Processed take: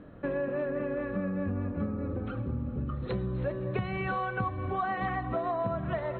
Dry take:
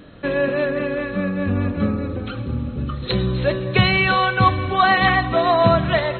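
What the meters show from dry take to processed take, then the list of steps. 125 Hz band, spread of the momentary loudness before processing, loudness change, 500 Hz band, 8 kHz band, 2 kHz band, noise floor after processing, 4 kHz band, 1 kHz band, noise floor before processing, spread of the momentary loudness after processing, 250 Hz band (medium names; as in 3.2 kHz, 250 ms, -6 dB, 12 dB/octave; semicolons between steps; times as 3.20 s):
-11.5 dB, 11 LU, -13.5 dB, -12.0 dB, no reading, -18.0 dB, -38 dBFS, -27.5 dB, -14.5 dB, -30 dBFS, 3 LU, -11.0 dB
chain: low-pass 1.4 kHz 12 dB/octave; compression 6:1, threshold -23 dBFS, peak gain reduction 12.5 dB; trim -5.5 dB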